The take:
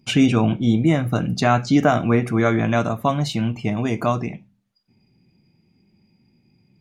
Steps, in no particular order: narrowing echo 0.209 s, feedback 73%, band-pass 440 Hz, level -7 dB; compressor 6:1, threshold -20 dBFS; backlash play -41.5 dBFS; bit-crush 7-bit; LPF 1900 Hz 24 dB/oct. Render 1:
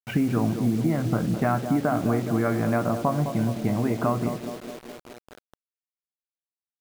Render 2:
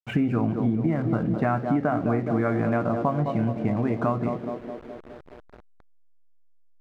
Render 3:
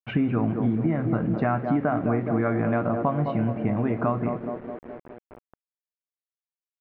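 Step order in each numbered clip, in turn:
LPF > backlash > compressor > narrowing echo > bit-crush; narrowing echo > bit-crush > LPF > backlash > compressor; narrowing echo > backlash > compressor > bit-crush > LPF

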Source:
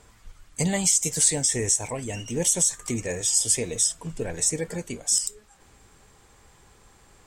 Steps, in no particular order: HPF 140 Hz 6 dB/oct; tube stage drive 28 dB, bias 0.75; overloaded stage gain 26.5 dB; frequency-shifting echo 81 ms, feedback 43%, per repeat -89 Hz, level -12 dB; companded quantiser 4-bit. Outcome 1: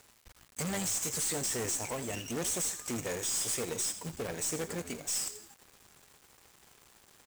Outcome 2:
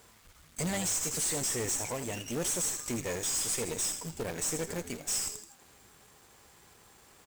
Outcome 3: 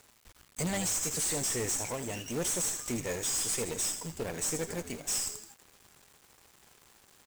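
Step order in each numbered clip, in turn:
overloaded stage > frequency-shifting echo > tube stage > HPF > companded quantiser; frequency-shifting echo > HPF > companded quantiser > tube stage > overloaded stage; frequency-shifting echo > HPF > tube stage > companded quantiser > overloaded stage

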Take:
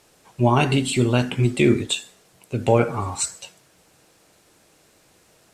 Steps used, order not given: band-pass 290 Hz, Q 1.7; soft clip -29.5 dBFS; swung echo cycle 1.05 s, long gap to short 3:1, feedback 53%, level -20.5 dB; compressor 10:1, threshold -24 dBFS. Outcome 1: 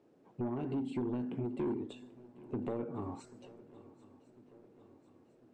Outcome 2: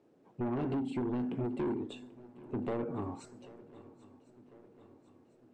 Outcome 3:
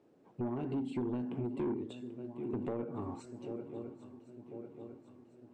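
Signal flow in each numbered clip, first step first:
compressor > band-pass > soft clip > swung echo; band-pass > compressor > soft clip > swung echo; swung echo > compressor > band-pass > soft clip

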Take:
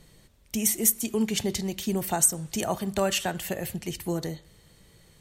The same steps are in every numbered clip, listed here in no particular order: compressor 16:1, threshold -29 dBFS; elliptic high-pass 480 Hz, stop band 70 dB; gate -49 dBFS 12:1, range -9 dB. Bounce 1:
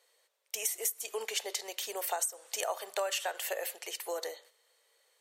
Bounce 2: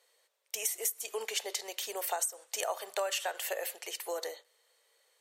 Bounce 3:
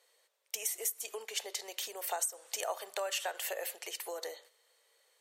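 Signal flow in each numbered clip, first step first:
gate > elliptic high-pass > compressor; elliptic high-pass > compressor > gate; compressor > gate > elliptic high-pass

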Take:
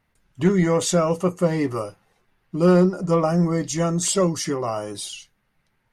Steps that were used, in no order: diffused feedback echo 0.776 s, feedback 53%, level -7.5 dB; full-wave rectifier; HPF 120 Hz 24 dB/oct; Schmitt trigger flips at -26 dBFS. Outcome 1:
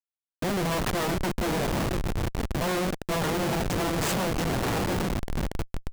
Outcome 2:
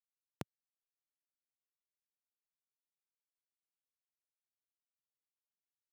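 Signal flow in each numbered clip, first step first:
diffused feedback echo > full-wave rectifier > HPF > Schmitt trigger; diffused feedback echo > full-wave rectifier > Schmitt trigger > HPF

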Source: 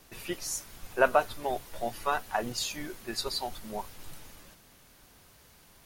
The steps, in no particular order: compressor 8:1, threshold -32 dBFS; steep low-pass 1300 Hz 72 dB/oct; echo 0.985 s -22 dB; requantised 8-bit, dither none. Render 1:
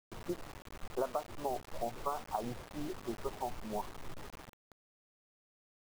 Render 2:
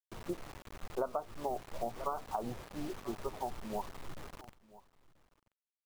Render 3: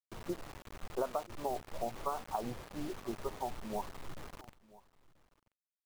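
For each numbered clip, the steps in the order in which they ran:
steep low-pass > compressor > echo > requantised; steep low-pass > requantised > echo > compressor; steep low-pass > compressor > requantised > echo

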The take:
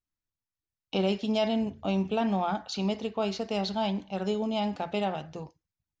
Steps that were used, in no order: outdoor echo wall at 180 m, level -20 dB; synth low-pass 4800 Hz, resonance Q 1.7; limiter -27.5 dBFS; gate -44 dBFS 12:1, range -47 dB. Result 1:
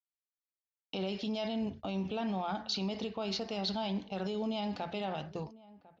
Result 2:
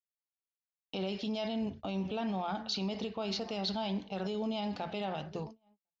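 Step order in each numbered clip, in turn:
limiter > synth low-pass > gate > outdoor echo; outdoor echo > limiter > gate > synth low-pass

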